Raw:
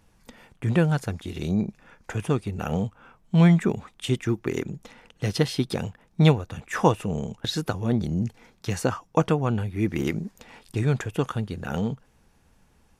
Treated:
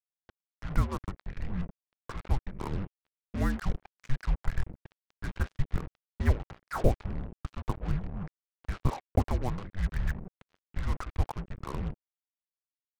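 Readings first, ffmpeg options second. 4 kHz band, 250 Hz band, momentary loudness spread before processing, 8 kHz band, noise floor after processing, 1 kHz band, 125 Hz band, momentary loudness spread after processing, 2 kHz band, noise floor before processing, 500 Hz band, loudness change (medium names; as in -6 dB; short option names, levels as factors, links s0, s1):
-16.5 dB, -13.0 dB, 13 LU, -14.0 dB, under -85 dBFS, -8.0 dB, -8.5 dB, 14 LU, -8.5 dB, -62 dBFS, -12.0 dB, -9.0 dB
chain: -af "highpass=f=260:t=q:w=0.5412,highpass=f=260:t=q:w=1.307,lowpass=f=2300:t=q:w=0.5176,lowpass=f=2300:t=q:w=0.7071,lowpass=f=2300:t=q:w=1.932,afreqshift=-390,lowshelf=f=61:g=9.5,acrusher=bits=5:mix=0:aa=0.5,volume=0.596"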